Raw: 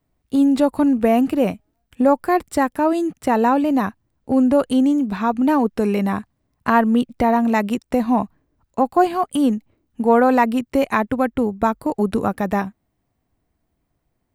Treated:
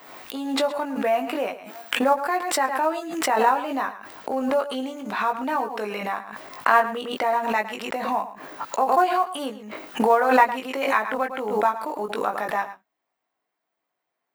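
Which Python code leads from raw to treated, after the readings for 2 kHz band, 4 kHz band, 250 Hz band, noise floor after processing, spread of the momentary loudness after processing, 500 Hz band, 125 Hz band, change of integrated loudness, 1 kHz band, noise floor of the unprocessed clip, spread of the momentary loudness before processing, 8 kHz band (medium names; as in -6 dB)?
+1.5 dB, +4.5 dB, -13.5 dB, -81 dBFS, 12 LU, -4.5 dB, under -15 dB, -5.0 dB, -1.0 dB, -73 dBFS, 7 LU, no reading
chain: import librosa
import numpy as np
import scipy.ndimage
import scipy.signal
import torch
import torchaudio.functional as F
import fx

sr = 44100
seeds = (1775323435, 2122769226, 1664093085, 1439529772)

p1 = scipy.signal.sosfilt(scipy.signal.butter(2, 740.0, 'highpass', fs=sr, output='sos'), x)
p2 = fx.peak_eq(p1, sr, hz=10000.0, db=-10.0, octaves=1.7)
p3 = fx.level_steps(p2, sr, step_db=18)
p4 = p2 + F.gain(torch.from_numpy(p3), -3.0).numpy()
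p5 = fx.quant_float(p4, sr, bits=4)
p6 = fx.doubler(p5, sr, ms=19.0, db=-4.5)
p7 = p6 + fx.echo_single(p6, sr, ms=109, db=-13.5, dry=0)
p8 = fx.pre_swell(p7, sr, db_per_s=52.0)
y = F.gain(torch.from_numpy(p8), -3.0).numpy()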